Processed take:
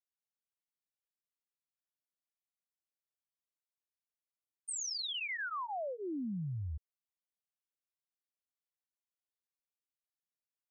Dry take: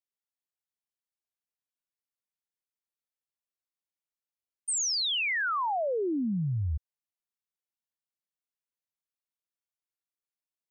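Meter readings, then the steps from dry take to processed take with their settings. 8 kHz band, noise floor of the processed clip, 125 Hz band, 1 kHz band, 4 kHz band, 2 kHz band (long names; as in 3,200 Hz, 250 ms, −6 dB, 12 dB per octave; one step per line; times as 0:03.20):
−10.0 dB, below −85 dBFS, −9.0 dB, −10.0 dB, −9.5 dB, −9.5 dB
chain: notch comb filter 450 Hz
level −8.5 dB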